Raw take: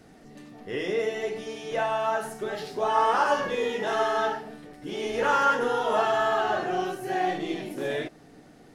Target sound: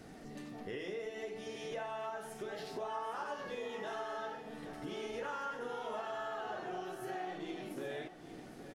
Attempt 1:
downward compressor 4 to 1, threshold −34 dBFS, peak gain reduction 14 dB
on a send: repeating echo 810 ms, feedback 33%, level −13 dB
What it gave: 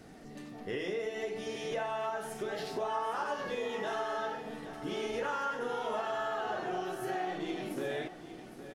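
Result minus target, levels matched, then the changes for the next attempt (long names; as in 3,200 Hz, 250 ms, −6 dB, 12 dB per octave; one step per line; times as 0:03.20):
downward compressor: peak gain reduction −6 dB
change: downward compressor 4 to 1, threshold −42 dBFS, peak gain reduction 20 dB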